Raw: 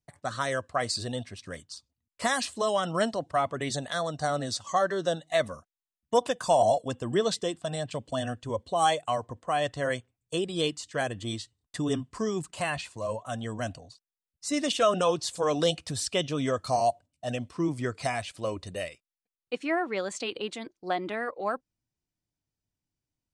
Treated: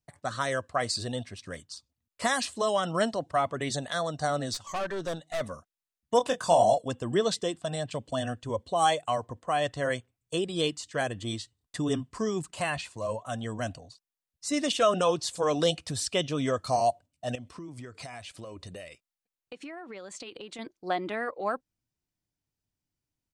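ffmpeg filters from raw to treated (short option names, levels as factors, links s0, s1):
-filter_complex "[0:a]asplit=3[s0][s1][s2];[s0]afade=t=out:st=4.53:d=0.02[s3];[s1]aeval=exprs='(tanh(25.1*val(0)+0.45)-tanh(0.45))/25.1':c=same,afade=t=in:st=4.53:d=0.02,afade=t=out:st=5.4:d=0.02[s4];[s2]afade=t=in:st=5.4:d=0.02[s5];[s3][s4][s5]amix=inputs=3:normalize=0,asplit=3[s6][s7][s8];[s6]afade=t=out:st=6.19:d=0.02[s9];[s7]asplit=2[s10][s11];[s11]adelay=24,volume=0.473[s12];[s10][s12]amix=inputs=2:normalize=0,afade=t=in:st=6.19:d=0.02,afade=t=out:st=6.73:d=0.02[s13];[s8]afade=t=in:st=6.73:d=0.02[s14];[s9][s13][s14]amix=inputs=3:normalize=0,asettb=1/sr,asplit=3[s15][s16][s17];[s15]atrim=end=17.354[s18];[s16]atrim=start=17.35:end=20.59,asetpts=PTS-STARTPTS,afade=t=in:d=0.004:c=qsin,afade=t=out:st=3.236:d=0.004:c=qsin,acompressor=threshold=0.0126:ratio=12:attack=3.2:release=140:knee=1:detection=peak[s19];[s17]atrim=start=20.586[s20];[s18][s19]acrossfade=d=0.004:c1=hsin:c2=qsin[s21];[s21][s20]acrossfade=d=0.004:c1=qsin:c2=hsin"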